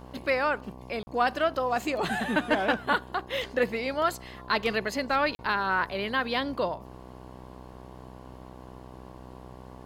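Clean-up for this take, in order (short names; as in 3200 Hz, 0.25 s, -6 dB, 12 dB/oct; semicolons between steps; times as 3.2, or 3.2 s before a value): de-hum 63.2 Hz, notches 18; interpolate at 1.03/5.35, 40 ms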